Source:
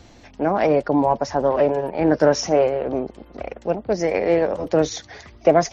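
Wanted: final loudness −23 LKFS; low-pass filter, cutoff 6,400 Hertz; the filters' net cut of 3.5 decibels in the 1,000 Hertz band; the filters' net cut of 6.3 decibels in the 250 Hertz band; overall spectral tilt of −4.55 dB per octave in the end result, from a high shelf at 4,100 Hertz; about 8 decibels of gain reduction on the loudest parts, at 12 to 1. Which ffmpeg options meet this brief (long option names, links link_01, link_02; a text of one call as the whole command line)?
ffmpeg -i in.wav -af "lowpass=6400,equalizer=frequency=250:width_type=o:gain=-8.5,equalizer=frequency=1000:width_type=o:gain=-4.5,highshelf=frequency=4100:gain=3,acompressor=threshold=-20dB:ratio=12,volume=4.5dB" out.wav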